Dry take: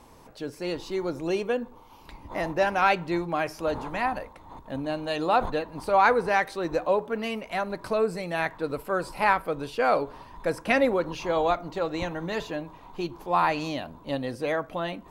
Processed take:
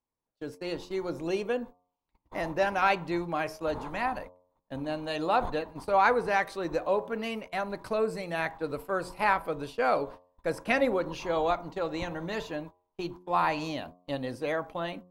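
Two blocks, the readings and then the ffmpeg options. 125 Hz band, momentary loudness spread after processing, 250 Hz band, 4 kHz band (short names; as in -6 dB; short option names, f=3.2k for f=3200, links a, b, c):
-3.5 dB, 12 LU, -3.5 dB, -3.0 dB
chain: -af "agate=range=-36dB:threshold=-38dB:ratio=16:detection=peak,bandreject=f=89.94:t=h:w=4,bandreject=f=179.88:t=h:w=4,bandreject=f=269.82:t=h:w=4,bandreject=f=359.76:t=h:w=4,bandreject=f=449.7:t=h:w=4,bandreject=f=539.64:t=h:w=4,bandreject=f=629.58:t=h:w=4,bandreject=f=719.52:t=h:w=4,bandreject=f=809.46:t=h:w=4,bandreject=f=899.4:t=h:w=4,bandreject=f=989.34:t=h:w=4,bandreject=f=1.07928k:t=h:w=4,bandreject=f=1.16922k:t=h:w=4,volume=-3dB"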